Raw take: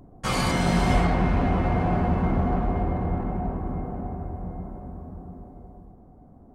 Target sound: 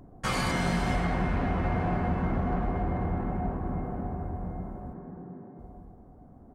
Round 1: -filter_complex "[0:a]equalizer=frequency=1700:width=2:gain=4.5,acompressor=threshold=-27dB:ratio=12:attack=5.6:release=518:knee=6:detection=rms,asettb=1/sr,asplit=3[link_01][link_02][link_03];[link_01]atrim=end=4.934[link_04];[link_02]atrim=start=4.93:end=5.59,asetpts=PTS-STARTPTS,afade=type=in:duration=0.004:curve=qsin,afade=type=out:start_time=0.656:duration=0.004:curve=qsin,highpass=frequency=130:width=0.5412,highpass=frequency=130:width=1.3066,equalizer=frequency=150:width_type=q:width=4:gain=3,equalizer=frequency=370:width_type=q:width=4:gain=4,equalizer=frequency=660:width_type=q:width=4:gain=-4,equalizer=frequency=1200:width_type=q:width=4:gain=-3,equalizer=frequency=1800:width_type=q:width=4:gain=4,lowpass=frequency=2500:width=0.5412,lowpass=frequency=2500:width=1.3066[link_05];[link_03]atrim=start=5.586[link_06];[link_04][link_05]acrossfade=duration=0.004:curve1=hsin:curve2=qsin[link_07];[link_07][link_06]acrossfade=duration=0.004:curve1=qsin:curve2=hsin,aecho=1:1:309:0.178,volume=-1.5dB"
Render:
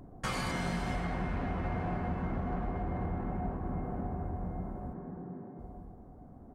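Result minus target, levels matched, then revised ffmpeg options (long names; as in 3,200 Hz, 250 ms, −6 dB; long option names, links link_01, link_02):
downward compressor: peak gain reduction +7 dB
-filter_complex "[0:a]equalizer=frequency=1700:width=2:gain=4.5,acompressor=threshold=-19.5dB:ratio=12:attack=5.6:release=518:knee=6:detection=rms,asettb=1/sr,asplit=3[link_01][link_02][link_03];[link_01]atrim=end=4.934[link_04];[link_02]atrim=start=4.93:end=5.59,asetpts=PTS-STARTPTS,afade=type=in:duration=0.004:curve=qsin,afade=type=out:start_time=0.656:duration=0.004:curve=qsin,highpass=frequency=130:width=0.5412,highpass=frequency=130:width=1.3066,equalizer=frequency=150:width_type=q:width=4:gain=3,equalizer=frequency=370:width_type=q:width=4:gain=4,equalizer=frequency=660:width_type=q:width=4:gain=-4,equalizer=frequency=1200:width_type=q:width=4:gain=-3,equalizer=frequency=1800:width_type=q:width=4:gain=4,lowpass=frequency=2500:width=0.5412,lowpass=frequency=2500:width=1.3066[link_05];[link_03]atrim=start=5.586[link_06];[link_04][link_05]acrossfade=duration=0.004:curve1=hsin:curve2=qsin[link_07];[link_07][link_06]acrossfade=duration=0.004:curve1=qsin:curve2=hsin,aecho=1:1:309:0.178,volume=-1.5dB"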